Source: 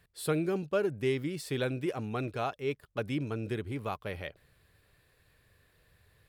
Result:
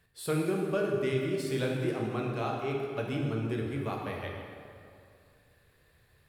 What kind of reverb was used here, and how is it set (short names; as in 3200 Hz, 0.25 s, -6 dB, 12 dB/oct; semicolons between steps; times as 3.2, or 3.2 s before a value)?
plate-style reverb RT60 2.4 s, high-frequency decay 0.65×, DRR -1 dB; gain -2.5 dB